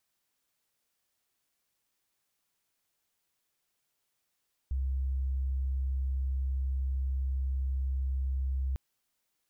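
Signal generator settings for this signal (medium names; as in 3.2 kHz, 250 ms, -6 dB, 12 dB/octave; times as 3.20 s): tone sine 66.2 Hz -28 dBFS 4.05 s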